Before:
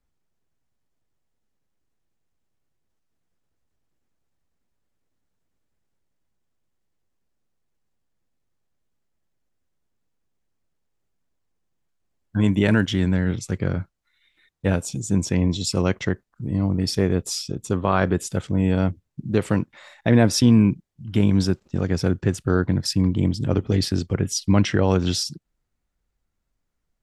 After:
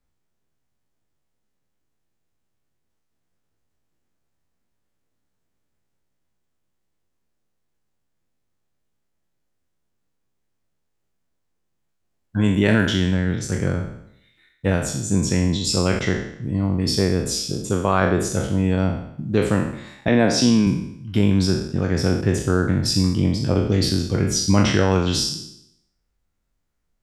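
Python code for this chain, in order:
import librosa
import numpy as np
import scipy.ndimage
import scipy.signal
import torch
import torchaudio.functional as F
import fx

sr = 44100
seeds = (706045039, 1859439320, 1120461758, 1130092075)

y = fx.spec_trails(x, sr, decay_s=0.72)
y = fx.bandpass_edges(y, sr, low_hz=170.0, high_hz=6600.0, at=(20.08, 20.67))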